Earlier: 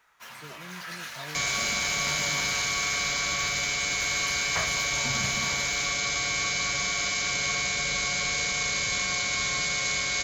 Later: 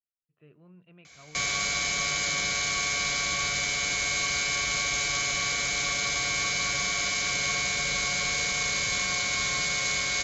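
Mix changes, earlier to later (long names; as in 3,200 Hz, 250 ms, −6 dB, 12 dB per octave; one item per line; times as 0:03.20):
speech −8.0 dB
first sound: muted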